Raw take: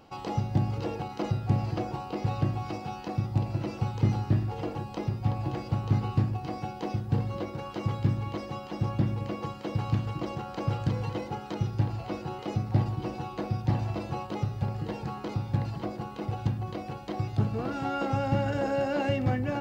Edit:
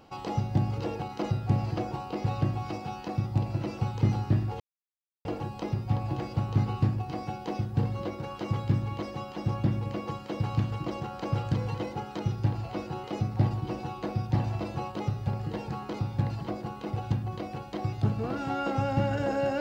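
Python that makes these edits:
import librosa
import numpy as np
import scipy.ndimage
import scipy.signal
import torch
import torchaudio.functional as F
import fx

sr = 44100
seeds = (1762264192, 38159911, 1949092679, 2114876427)

y = fx.edit(x, sr, fx.insert_silence(at_s=4.6, length_s=0.65), tone=tone)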